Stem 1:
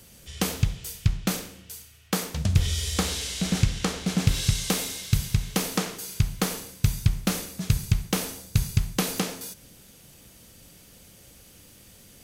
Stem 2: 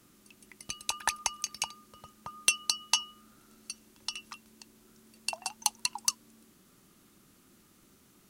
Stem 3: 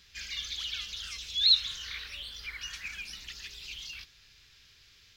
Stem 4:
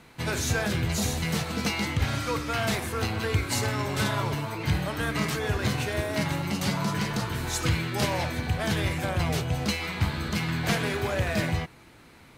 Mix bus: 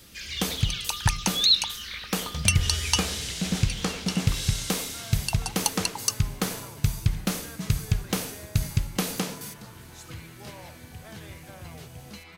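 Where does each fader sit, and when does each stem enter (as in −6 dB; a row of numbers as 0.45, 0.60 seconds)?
−2.0, +2.5, +2.5, −16.0 decibels; 0.00, 0.00, 0.00, 2.45 seconds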